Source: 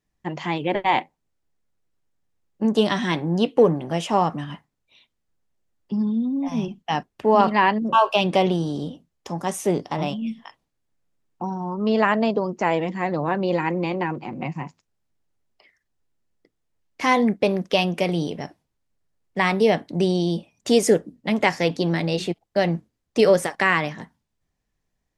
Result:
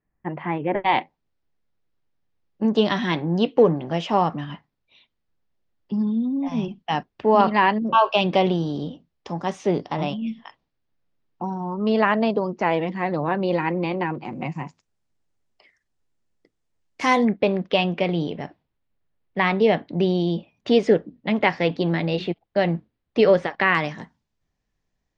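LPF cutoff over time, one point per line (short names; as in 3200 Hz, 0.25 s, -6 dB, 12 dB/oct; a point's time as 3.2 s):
LPF 24 dB/oct
2100 Hz
from 0.84 s 5000 Hz
from 14.25 s 9300 Hz
from 17.25 s 3900 Hz
from 23.75 s 6800 Hz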